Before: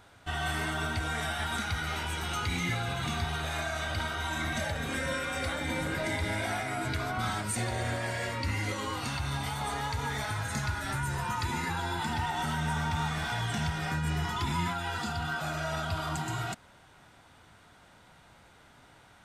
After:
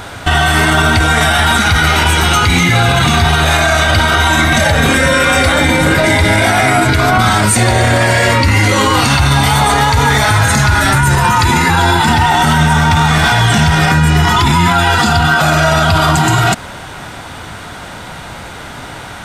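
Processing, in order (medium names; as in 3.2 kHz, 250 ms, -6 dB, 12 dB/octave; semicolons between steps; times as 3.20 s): loudness maximiser +30 dB; trim -1 dB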